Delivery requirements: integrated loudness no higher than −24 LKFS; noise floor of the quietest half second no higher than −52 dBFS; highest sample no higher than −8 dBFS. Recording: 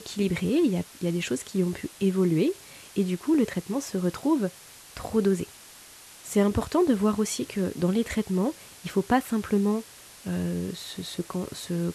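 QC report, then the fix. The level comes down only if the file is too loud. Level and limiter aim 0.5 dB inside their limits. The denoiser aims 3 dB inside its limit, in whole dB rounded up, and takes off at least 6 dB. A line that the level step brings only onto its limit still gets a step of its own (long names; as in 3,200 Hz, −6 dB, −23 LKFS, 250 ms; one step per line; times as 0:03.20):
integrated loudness −27.0 LKFS: in spec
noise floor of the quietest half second −49 dBFS: out of spec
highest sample −9.5 dBFS: in spec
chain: broadband denoise 6 dB, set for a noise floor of −49 dBFS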